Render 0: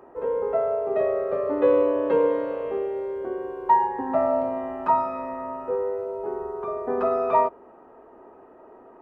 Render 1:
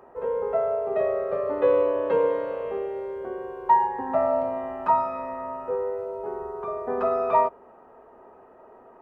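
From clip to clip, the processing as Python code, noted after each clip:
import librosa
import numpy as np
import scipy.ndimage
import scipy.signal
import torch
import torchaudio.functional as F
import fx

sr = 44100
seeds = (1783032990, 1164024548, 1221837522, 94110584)

y = fx.peak_eq(x, sr, hz=310.0, db=-8.5, octaves=0.51)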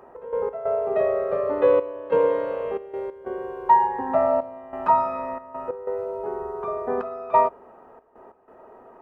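y = fx.step_gate(x, sr, bpm=92, pattern='x.x.xxxxxxx..xxx', floor_db=-12.0, edge_ms=4.5)
y = y * 10.0 ** (2.5 / 20.0)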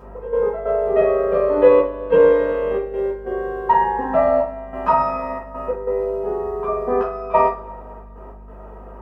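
y = fx.add_hum(x, sr, base_hz=50, snr_db=24)
y = fx.rev_double_slope(y, sr, seeds[0], early_s=0.29, late_s=2.3, knee_db=-27, drr_db=-5.5)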